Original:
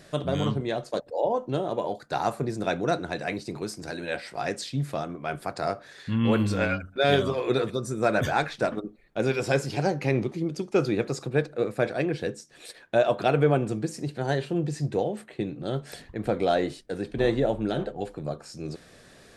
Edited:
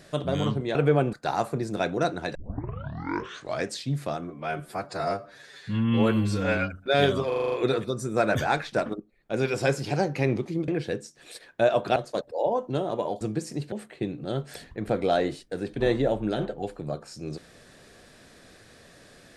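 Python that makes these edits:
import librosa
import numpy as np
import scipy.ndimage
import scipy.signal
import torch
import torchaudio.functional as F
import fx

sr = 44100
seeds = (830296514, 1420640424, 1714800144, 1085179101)

y = fx.edit(x, sr, fx.swap(start_s=0.75, length_s=1.25, other_s=13.3, other_length_s=0.38),
    fx.tape_start(start_s=3.22, length_s=1.33),
    fx.stretch_span(start_s=5.13, length_s=1.54, factor=1.5),
    fx.stutter(start_s=7.38, slice_s=0.04, count=7),
    fx.fade_in_from(start_s=8.86, length_s=0.46, floor_db=-14.0),
    fx.cut(start_s=10.54, length_s=1.48),
    fx.cut(start_s=14.19, length_s=0.91), tone=tone)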